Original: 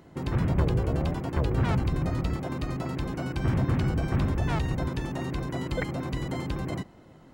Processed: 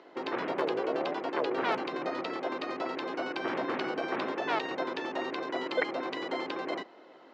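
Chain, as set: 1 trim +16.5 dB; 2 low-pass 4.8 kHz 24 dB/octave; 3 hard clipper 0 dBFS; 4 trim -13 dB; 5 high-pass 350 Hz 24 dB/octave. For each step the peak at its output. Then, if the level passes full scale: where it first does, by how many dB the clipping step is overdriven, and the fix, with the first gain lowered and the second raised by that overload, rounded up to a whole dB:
+3.0 dBFS, +3.0 dBFS, 0.0 dBFS, -13.0 dBFS, -14.0 dBFS; step 1, 3.0 dB; step 1 +13.5 dB, step 4 -10 dB

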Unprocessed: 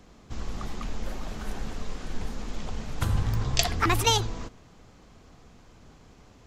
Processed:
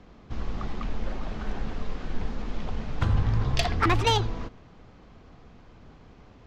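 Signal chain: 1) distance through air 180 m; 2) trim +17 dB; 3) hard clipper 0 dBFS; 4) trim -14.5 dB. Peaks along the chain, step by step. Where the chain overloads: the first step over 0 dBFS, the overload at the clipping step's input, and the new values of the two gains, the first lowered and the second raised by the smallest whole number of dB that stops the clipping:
-10.5 dBFS, +6.5 dBFS, 0.0 dBFS, -14.5 dBFS; step 2, 6.5 dB; step 2 +10 dB, step 4 -7.5 dB

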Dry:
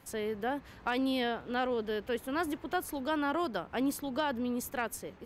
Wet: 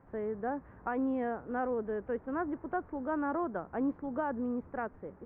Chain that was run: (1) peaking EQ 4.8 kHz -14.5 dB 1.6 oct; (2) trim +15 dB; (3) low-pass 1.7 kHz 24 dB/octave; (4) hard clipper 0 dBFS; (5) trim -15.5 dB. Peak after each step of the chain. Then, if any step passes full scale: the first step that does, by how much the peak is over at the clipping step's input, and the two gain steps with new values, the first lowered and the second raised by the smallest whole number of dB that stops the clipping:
-20.5 dBFS, -5.5 dBFS, -6.0 dBFS, -6.0 dBFS, -21.5 dBFS; nothing clips

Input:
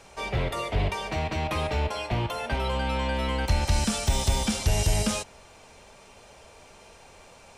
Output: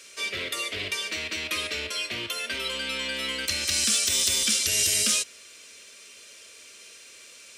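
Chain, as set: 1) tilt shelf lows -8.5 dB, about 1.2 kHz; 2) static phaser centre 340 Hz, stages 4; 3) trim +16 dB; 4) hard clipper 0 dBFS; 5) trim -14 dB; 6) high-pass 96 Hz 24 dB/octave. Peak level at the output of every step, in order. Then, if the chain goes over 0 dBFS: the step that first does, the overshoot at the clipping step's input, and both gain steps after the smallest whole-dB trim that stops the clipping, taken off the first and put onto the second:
-10.5 dBFS, -11.0 dBFS, +5.0 dBFS, 0.0 dBFS, -14.0 dBFS, -12.5 dBFS; step 3, 5.0 dB; step 3 +11 dB, step 5 -9 dB

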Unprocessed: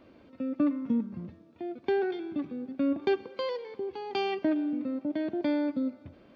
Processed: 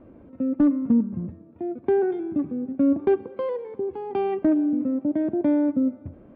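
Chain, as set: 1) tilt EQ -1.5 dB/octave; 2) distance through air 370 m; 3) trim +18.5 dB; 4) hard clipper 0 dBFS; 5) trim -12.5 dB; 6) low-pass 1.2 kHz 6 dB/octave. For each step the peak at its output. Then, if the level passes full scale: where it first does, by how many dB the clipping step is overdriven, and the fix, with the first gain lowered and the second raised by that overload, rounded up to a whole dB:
-13.5 dBFS, -15.0 dBFS, +3.5 dBFS, 0.0 dBFS, -12.5 dBFS, -12.5 dBFS; step 3, 3.5 dB; step 3 +14.5 dB, step 5 -8.5 dB

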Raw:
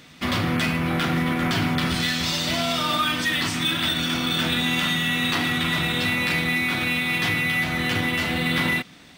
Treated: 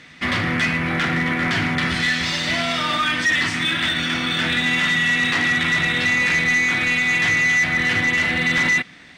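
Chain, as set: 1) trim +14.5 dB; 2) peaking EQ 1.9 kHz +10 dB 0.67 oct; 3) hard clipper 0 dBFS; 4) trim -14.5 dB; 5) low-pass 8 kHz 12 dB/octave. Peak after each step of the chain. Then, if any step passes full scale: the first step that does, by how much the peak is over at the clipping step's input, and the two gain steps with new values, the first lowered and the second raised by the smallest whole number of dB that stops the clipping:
+4.0 dBFS, +9.0 dBFS, 0.0 dBFS, -14.5 dBFS, -13.5 dBFS; step 1, 9.0 dB; step 1 +5.5 dB, step 4 -5.5 dB

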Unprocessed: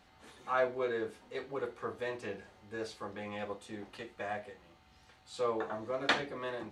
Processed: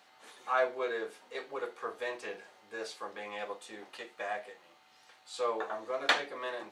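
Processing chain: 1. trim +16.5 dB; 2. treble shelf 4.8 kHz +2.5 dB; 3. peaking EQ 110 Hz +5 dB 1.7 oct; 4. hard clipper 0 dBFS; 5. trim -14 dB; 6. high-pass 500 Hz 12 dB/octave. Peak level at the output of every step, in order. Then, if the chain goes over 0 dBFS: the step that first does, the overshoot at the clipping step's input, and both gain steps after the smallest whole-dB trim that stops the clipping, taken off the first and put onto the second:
+3.0 dBFS, +3.5 dBFS, +3.0 dBFS, 0.0 dBFS, -14.0 dBFS, -11.5 dBFS; step 1, 3.0 dB; step 1 +13.5 dB, step 5 -11 dB

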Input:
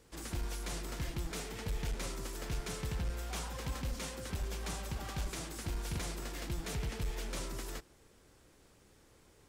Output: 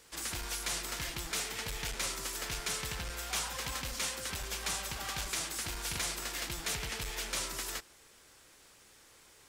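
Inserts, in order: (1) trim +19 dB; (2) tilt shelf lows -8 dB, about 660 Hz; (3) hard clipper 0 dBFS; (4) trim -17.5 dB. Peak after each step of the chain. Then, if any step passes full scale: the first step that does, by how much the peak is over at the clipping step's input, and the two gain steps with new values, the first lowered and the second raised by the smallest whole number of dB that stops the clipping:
-11.5 dBFS, -3.5 dBFS, -3.5 dBFS, -21.0 dBFS; nothing clips

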